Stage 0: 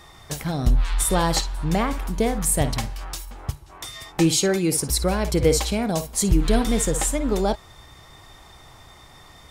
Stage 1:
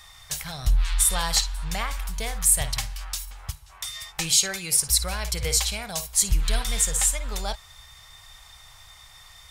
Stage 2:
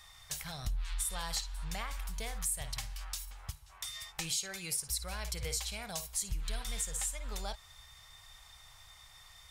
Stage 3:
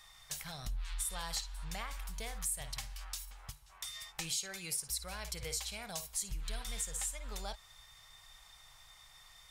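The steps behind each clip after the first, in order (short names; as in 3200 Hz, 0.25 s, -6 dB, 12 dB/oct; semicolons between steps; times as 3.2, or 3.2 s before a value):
passive tone stack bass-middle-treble 10-0-10; gain +4 dB
compressor 2.5:1, threshold -28 dBFS, peak gain reduction 9.5 dB; gain -7.5 dB
bell 77 Hz -12 dB 0.58 oct; gain -2 dB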